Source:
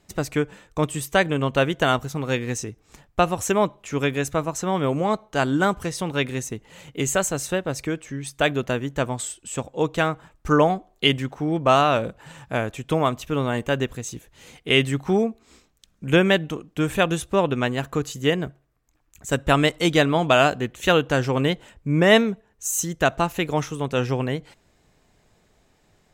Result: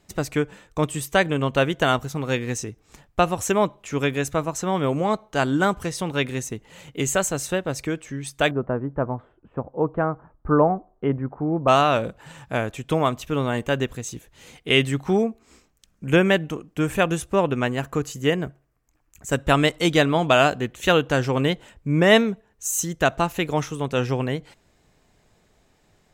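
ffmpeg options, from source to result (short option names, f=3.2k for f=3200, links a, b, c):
-filter_complex "[0:a]asettb=1/sr,asplit=3[a][b][c];[a]atrim=end=8.514[d];[b]atrim=start=8.51:end=11.68,asetpts=PTS-STARTPTS,afade=t=in:d=0.004:c=qsin,afade=t=out:st=3.166:d=0.004:c=qsin,lowpass=f=1.3k:w=0.5412,lowpass=f=1.3k:w=1.3066[e];[c]atrim=start=11.676[f];[d][e]acrossfade=d=0.004:c1=hsin:c2=qsin[g];[g][f]acrossfade=d=0.004:c1=qsin:c2=hsin,asettb=1/sr,asplit=3[h][i][j];[h]atrim=end=15.224[k];[i]atrim=start=15.22:end=19.35,asetpts=PTS-STARTPTS,afade=t=in:d=0.004:c=qsin,afade=t=out:st=4.126:d=0.004:c=qsin,equalizer=f=3.7k:t=o:w=0.44:g=-6[l];[j]atrim=start=19.346[m];[k][l]acrossfade=d=0.004:c1=hsin:c2=qsin[n];[n][m]acrossfade=d=0.004:c1=qsin:c2=hsin"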